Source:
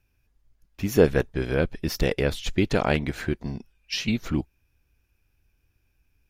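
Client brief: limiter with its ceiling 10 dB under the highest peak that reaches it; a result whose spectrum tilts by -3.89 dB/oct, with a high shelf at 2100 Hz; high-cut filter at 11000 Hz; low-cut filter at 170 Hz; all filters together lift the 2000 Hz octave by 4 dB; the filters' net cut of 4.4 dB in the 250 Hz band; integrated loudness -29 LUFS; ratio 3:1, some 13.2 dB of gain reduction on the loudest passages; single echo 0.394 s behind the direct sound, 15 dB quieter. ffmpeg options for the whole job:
-af "highpass=170,lowpass=11k,equalizer=f=250:t=o:g=-4.5,equalizer=f=2k:t=o:g=7,highshelf=f=2.1k:g=-3,acompressor=threshold=-31dB:ratio=3,alimiter=level_in=0.5dB:limit=-24dB:level=0:latency=1,volume=-0.5dB,aecho=1:1:394:0.178,volume=9dB"

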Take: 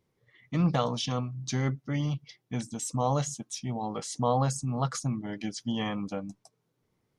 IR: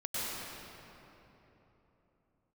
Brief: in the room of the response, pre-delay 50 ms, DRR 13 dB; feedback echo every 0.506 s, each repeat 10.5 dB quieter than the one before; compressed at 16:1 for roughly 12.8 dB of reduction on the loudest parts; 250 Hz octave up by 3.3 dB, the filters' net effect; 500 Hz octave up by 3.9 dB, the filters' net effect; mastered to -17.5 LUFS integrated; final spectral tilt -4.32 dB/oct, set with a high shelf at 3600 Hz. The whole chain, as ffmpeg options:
-filter_complex "[0:a]equalizer=f=250:t=o:g=3.5,equalizer=f=500:t=o:g=3.5,highshelf=f=3.6k:g=9,acompressor=threshold=-31dB:ratio=16,aecho=1:1:506|1012|1518:0.299|0.0896|0.0269,asplit=2[a][b];[1:a]atrim=start_sample=2205,adelay=50[c];[b][c]afir=irnorm=-1:irlink=0,volume=-19dB[d];[a][d]amix=inputs=2:normalize=0,volume=18dB"

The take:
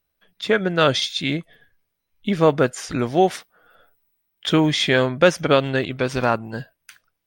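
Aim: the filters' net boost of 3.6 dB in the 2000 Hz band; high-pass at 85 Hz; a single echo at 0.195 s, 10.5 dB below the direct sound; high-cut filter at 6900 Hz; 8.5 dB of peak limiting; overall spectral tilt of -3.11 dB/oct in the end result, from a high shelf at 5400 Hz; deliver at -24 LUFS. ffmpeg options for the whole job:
-af "highpass=85,lowpass=6.9k,equalizer=f=2k:t=o:g=4.5,highshelf=f=5.4k:g=3,alimiter=limit=-8dB:level=0:latency=1,aecho=1:1:195:0.299,volume=-2.5dB"

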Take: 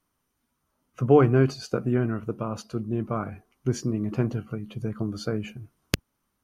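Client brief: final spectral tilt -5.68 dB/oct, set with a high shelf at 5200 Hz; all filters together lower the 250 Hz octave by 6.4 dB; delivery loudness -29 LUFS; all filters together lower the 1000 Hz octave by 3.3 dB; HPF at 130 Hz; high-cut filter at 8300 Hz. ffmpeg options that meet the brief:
-af "highpass=130,lowpass=8.3k,equalizer=f=250:t=o:g=-7.5,equalizer=f=1k:t=o:g=-4.5,highshelf=f=5.2k:g=5.5,volume=1.5dB"

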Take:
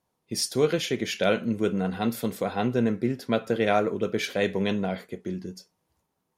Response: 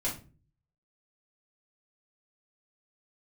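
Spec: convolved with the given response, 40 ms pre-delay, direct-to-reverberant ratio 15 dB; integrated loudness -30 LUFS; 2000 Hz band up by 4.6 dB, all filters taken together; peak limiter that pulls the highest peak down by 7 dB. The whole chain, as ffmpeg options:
-filter_complex "[0:a]equalizer=f=2k:t=o:g=6,alimiter=limit=-14.5dB:level=0:latency=1,asplit=2[a][b];[1:a]atrim=start_sample=2205,adelay=40[c];[b][c]afir=irnorm=-1:irlink=0,volume=-20dB[d];[a][d]amix=inputs=2:normalize=0,volume=-2.5dB"

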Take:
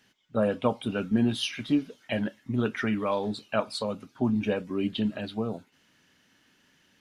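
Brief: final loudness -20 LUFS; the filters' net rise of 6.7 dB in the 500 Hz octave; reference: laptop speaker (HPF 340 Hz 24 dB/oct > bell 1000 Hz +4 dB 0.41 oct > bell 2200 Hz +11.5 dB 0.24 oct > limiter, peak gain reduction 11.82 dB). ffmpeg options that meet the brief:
-af "highpass=f=340:w=0.5412,highpass=f=340:w=1.3066,equalizer=f=500:t=o:g=8,equalizer=f=1k:t=o:w=0.41:g=4,equalizer=f=2.2k:t=o:w=0.24:g=11.5,volume=11dB,alimiter=limit=-8.5dB:level=0:latency=1"

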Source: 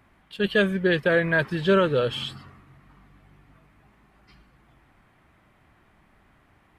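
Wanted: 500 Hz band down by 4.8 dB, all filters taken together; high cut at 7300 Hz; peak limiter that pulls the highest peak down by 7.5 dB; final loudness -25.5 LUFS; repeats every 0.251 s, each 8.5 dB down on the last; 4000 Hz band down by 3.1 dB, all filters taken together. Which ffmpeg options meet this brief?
-af "lowpass=7.3k,equalizer=f=500:t=o:g=-6,equalizer=f=4k:t=o:g=-4,alimiter=limit=-20dB:level=0:latency=1,aecho=1:1:251|502|753|1004:0.376|0.143|0.0543|0.0206,volume=3.5dB"

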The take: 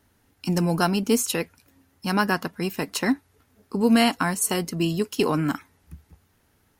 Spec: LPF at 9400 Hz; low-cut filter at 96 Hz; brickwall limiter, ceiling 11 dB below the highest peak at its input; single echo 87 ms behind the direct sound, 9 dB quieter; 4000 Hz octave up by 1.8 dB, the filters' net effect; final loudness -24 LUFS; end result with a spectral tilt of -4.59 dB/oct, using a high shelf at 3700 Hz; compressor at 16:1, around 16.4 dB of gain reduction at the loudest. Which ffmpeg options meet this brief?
-af "highpass=96,lowpass=9.4k,highshelf=f=3.7k:g=-5,equalizer=f=4k:t=o:g=6,acompressor=threshold=-31dB:ratio=16,alimiter=level_in=6.5dB:limit=-24dB:level=0:latency=1,volume=-6.5dB,aecho=1:1:87:0.355,volume=16dB"

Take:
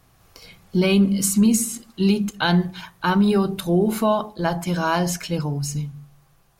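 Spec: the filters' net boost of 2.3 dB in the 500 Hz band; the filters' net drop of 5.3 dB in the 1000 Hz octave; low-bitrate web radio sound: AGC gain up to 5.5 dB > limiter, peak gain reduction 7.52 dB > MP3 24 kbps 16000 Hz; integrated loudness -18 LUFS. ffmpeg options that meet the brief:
-af "equalizer=f=500:t=o:g=5.5,equalizer=f=1k:t=o:g=-8.5,dynaudnorm=m=5.5dB,alimiter=limit=-15dB:level=0:latency=1,volume=7.5dB" -ar 16000 -c:a libmp3lame -b:a 24k

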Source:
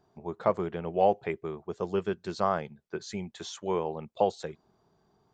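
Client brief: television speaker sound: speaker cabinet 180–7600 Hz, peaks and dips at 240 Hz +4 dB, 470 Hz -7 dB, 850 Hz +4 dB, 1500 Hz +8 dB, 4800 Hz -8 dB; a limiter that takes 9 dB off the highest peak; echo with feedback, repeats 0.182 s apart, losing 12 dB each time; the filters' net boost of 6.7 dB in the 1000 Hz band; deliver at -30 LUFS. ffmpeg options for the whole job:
-af "equalizer=f=1k:t=o:g=6,alimiter=limit=-17.5dB:level=0:latency=1,highpass=f=180:w=0.5412,highpass=f=180:w=1.3066,equalizer=f=240:t=q:w=4:g=4,equalizer=f=470:t=q:w=4:g=-7,equalizer=f=850:t=q:w=4:g=4,equalizer=f=1.5k:t=q:w=4:g=8,equalizer=f=4.8k:t=q:w=4:g=-8,lowpass=f=7.6k:w=0.5412,lowpass=f=7.6k:w=1.3066,aecho=1:1:182|364|546:0.251|0.0628|0.0157,volume=3dB"

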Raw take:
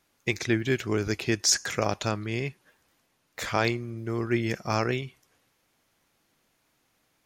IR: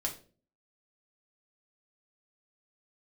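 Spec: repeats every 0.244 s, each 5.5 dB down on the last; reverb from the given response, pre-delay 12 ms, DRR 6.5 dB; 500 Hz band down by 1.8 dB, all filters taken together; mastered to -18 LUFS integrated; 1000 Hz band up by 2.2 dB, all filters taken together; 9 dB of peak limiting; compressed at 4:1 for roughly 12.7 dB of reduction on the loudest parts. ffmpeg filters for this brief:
-filter_complex "[0:a]equalizer=f=500:t=o:g=-3.5,equalizer=f=1k:t=o:g=4,acompressor=threshold=-35dB:ratio=4,alimiter=level_in=4dB:limit=-24dB:level=0:latency=1,volume=-4dB,aecho=1:1:244|488|732|976|1220|1464|1708:0.531|0.281|0.149|0.079|0.0419|0.0222|0.0118,asplit=2[a][b];[1:a]atrim=start_sample=2205,adelay=12[c];[b][c]afir=irnorm=-1:irlink=0,volume=-9dB[d];[a][d]amix=inputs=2:normalize=0,volume=21dB"

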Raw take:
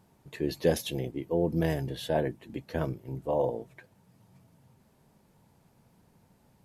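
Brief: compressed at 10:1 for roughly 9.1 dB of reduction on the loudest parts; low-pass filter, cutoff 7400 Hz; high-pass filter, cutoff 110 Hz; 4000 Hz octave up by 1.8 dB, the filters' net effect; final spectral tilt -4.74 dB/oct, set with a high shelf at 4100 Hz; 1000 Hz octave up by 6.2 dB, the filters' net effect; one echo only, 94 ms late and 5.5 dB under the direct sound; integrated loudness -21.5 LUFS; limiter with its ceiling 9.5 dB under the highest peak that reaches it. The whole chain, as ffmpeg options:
-af "highpass=110,lowpass=7.4k,equalizer=f=1k:t=o:g=9,equalizer=f=4k:t=o:g=6,highshelf=f=4.1k:g=-7.5,acompressor=threshold=-27dB:ratio=10,alimiter=level_in=1dB:limit=-24dB:level=0:latency=1,volume=-1dB,aecho=1:1:94:0.531,volume=15dB"

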